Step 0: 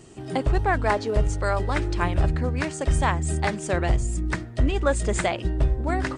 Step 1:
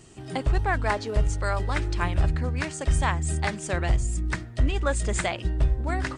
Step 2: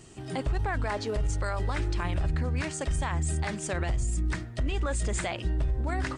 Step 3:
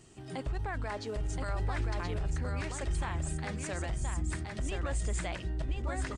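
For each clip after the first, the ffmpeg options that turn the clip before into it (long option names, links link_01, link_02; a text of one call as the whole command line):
ffmpeg -i in.wav -af "equalizer=frequency=400:width=0.47:gain=-5.5" out.wav
ffmpeg -i in.wav -af "alimiter=limit=-21dB:level=0:latency=1:release=33" out.wav
ffmpeg -i in.wav -af "aecho=1:1:1024:0.631,volume=-6.5dB" out.wav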